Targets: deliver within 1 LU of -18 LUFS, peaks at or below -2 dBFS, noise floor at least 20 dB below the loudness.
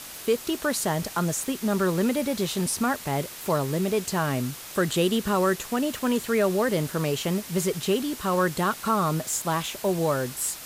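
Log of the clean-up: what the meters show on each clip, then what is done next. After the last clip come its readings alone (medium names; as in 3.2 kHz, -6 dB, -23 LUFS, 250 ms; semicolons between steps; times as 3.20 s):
noise floor -41 dBFS; noise floor target -46 dBFS; loudness -26.0 LUFS; peak level -12.0 dBFS; loudness target -18.0 LUFS
-> noise print and reduce 6 dB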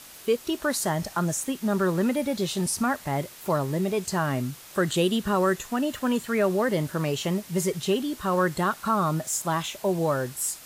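noise floor -46 dBFS; noise floor target -47 dBFS
-> noise print and reduce 6 dB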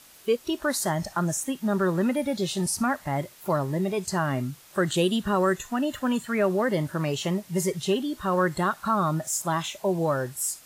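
noise floor -52 dBFS; loudness -26.5 LUFS; peak level -12.5 dBFS; loudness target -18.0 LUFS
-> trim +8.5 dB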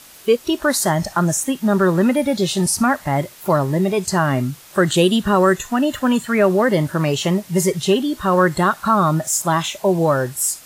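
loudness -18.0 LUFS; peak level -4.0 dBFS; noise floor -43 dBFS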